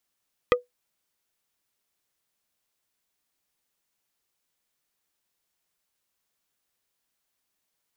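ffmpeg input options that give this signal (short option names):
-f lavfi -i "aevalsrc='0.251*pow(10,-3*t/0.15)*sin(2*PI*492*t)+0.188*pow(10,-3*t/0.05)*sin(2*PI*1230*t)+0.141*pow(10,-3*t/0.028)*sin(2*PI*1968*t)+0.106*pow(10,-3*t/0.022)*sin(2*PI*2460*t)+0.0794*pow(10,-3*t/0.016)*sin(2*PI*3198*t)':d=0.45:s=44100"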